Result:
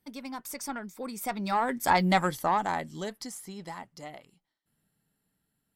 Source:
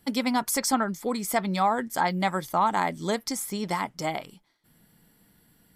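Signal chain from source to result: single-diode clipper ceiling -15.5 dBFS; Doppler pass-by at 2.06 s, 19 m/s, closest 5.3 m; trim +4 dB

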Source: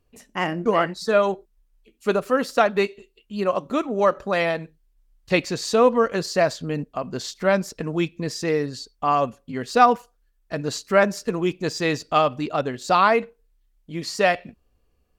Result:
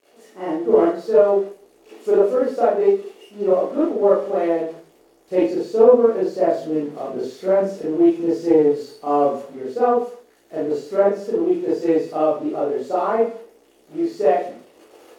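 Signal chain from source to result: zero-crossing glitches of -16 dBFS; level rider gain up to 7.5 dB; band-pass filter 420 Hz, Q 2.8; reverberation RT60 0.45 s, pre-delay 30 ms, DRR -9.5 dB; loudspeaker Doppler distortion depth 0.11 ms; trim -5.5 dB

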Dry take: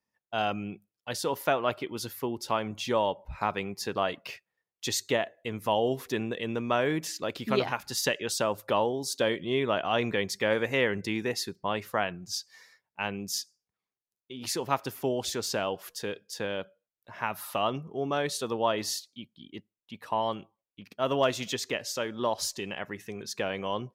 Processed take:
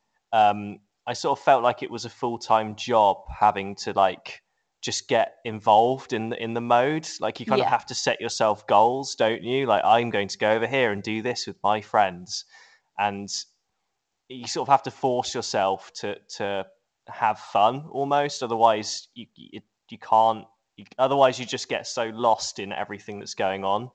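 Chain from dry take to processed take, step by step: peaking EQ 800 Hz +13.5 dB 0.5 oct; trim +2.5 dB; µ-law 128 kbps 16 kHz

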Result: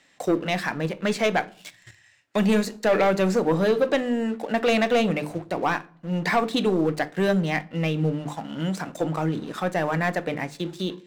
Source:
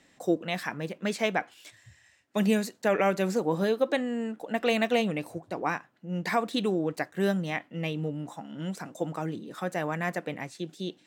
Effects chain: treble shelf 7.5 kHz -9.5 dB; hum notches 50/100/150/200/250/300/350/400/450 Hz; waveshaping leveller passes 2; simulated room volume 500 m³, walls furnished, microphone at 0.35 m; tape noise reduction on one side only encoder only

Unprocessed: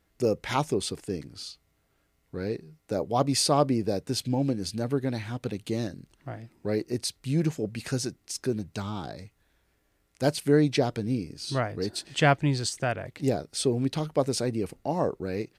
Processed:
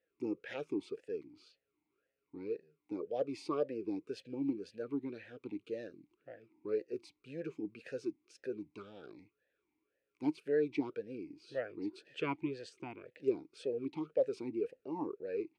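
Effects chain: talking filter e-u 1.9 Hz

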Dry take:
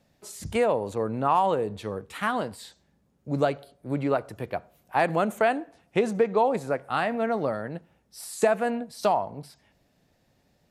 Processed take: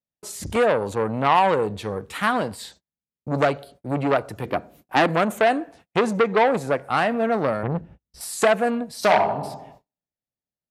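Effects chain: 4.45–5.07 s: peaking EQ 280 Hz +11 dB 0.95 oct; 8.97–9.40 s: reverb throw, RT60 0.97 s, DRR 3.5 dB; gate -54 dBFS, range -38 dB; 2.50–3.29 s: transient shaper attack +3 dB, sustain -1 dB; 7.63–8.21 s: RIAA curve playback; transformer saturation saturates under 1.8 kHz; trim +6.5 dB

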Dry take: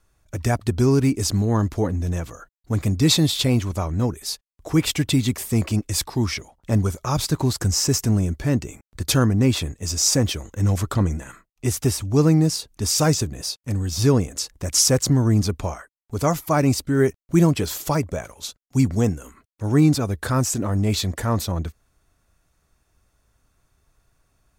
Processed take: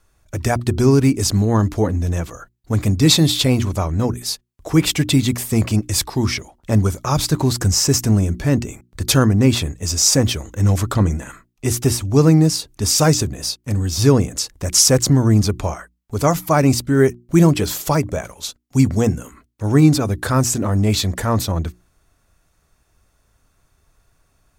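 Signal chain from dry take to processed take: hum notches 60/120/180/240/300/360 Hz; trim +4.5 dB

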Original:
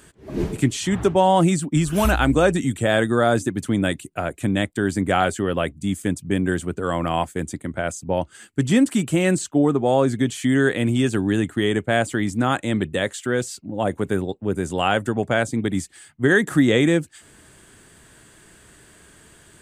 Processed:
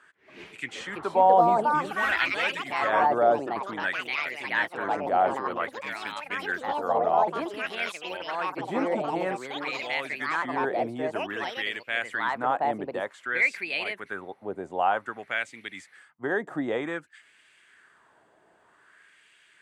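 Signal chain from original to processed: ever faster or slower copies 462 ms, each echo +4 st, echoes 3; 4.77–5.62 s: transient shaper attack -9 dB, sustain +6 dB; LFO band-pass sine 0.53 Hz 700–2500 Hz; trim +1 dB

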